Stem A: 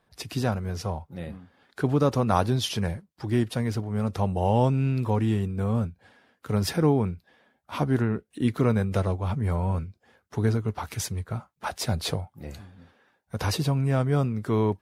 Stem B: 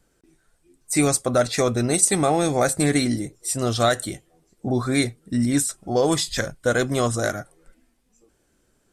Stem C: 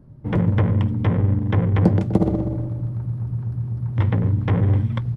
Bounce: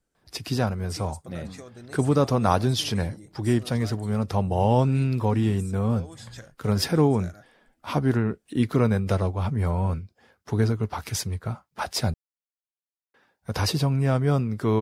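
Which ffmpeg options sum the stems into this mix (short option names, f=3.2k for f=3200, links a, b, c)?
-filter_complex "[0:a]equalizer=f=5k:w=4.7:g=4.5,adelay=150,volume=1.5dB,asplit=3[a][b][c];[a]atrim=end=12.14,asetpts=PTS-STARTPTS,afade=t=out:st=12.136:d=0.004:c=hsin[d];[b]atrim=start=12.14:end=13.14,asetpts=PTS-STARTPTS,volume=0[e];[c]atrim=start=13.14,asetpts=PTS-STARTPTS,afade=t=in:d=0.004:c=hsin[f];[d][e][f]concat=n=3:v=0:a=1[g];[1:a]acompressor=threshold=-28dB:ratio=4,volume=-14dB,asplit=2[h][i];[2:a]acompressor=threshold=-28dB:ratio=6,aeval=exprs='val(0)*pow(10,-18*(0.5-0.5*cos(2*PI*1.2*n/s))/20)':c=same,adelay=1300,volume=-5.5dB[j];[i]apad=whole_len=284931[k];[j][k]sidechaincompress=threshold=-47dB:ratio=8:attack=16:release=783[l];[g][h][l]amix=inputs=3:normalize=0"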